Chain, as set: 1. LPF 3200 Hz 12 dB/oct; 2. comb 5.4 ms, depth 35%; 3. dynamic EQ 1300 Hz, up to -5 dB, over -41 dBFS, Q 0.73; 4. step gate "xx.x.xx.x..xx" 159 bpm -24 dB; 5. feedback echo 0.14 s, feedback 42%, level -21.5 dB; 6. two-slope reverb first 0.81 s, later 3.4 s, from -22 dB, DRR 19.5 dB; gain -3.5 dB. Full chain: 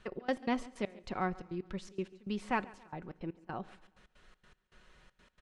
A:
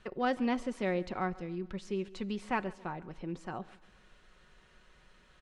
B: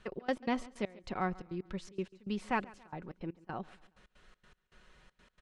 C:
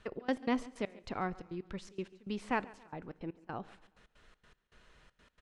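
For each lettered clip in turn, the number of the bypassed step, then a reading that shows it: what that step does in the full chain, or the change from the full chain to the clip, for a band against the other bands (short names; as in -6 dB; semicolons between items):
4, crest factor change -2.5 dB; 6, echo-to-direct -17.0 dB to -20.5 dB; 2, 125 Hz band -1.5 dB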